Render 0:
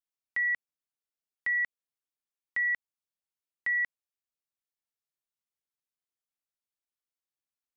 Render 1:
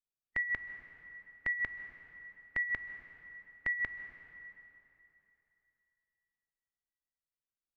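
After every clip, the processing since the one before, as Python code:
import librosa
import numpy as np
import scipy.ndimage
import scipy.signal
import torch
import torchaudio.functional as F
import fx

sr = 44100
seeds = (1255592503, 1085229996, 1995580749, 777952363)

y = fx.noise_reduce_blind(x, sr, reduce_db=13)
y = fx.tilt_eq(y, sr, slope=-3.0)
y = fx.rev_plate(y, sr, seeds[0], rt60_s=3.1, hf_ratio=0.85, predelay_ms=120, drr_db=9.0)
y = y * librosa.db_to_amplitude(4.0)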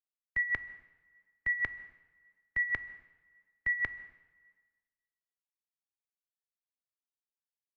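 y = fx.band_widen(x, sr, depth_pct=100)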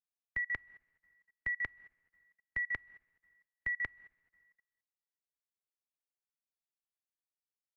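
y = fx.level_steps(x, sr, step_db=18)
y = fx.transient(y, sr, attack_db=2, sustain_db=-8)
y = y * librosa.db_to_amplitude(1.5)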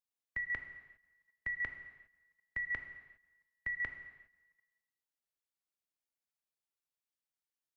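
y = fx.rev_gated(x, sr, seeds[1], gate_ms=430, shape='falling', drr_db=7.0)
y = y * librosa.db_to_amplitude(-2.0)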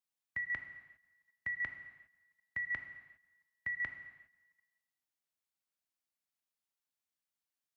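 y = scipy.signal.sosfilt(scipy.signal.butter(2, 69.0, 'highpass', fs=sr, output='sos'), x)
y = fx.peak_eq(y, sr, hz=440.0, db=-10.5, octaves=0.34)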